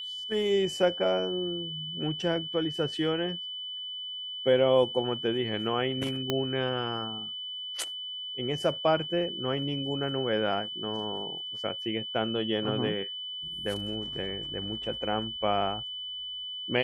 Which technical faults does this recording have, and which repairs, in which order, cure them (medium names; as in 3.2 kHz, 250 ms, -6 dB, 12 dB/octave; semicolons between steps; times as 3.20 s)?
whine 3 kHz -35 dBFS
6.30 s: pop -13 dBFS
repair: de-click; band-stop 3 kHz, Q 30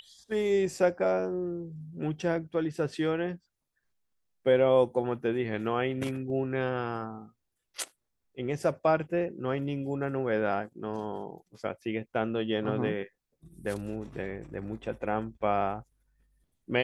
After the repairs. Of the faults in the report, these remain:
6.30 s: pop